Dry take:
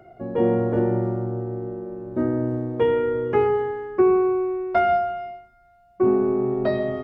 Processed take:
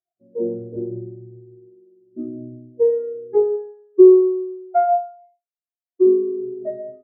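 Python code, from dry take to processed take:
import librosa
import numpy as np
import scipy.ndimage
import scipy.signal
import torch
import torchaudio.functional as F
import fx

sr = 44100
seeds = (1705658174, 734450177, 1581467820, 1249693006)

y = fx.echo_thinned(x, sr, ms=98, feedback_pct=53, hz=410.0, wet_db=-16)
y = fx.spectral_expand(y, sr, expansion=2.5)
y = y * librosa.db_to_amplitude(6.5)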